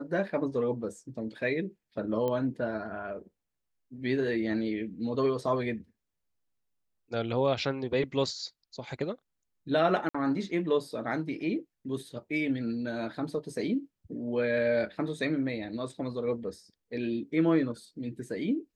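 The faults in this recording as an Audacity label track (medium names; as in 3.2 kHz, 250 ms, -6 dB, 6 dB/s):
2.280000	2.280000	pop -20 dBFS
10.090000	10.140000	dropout 55 ms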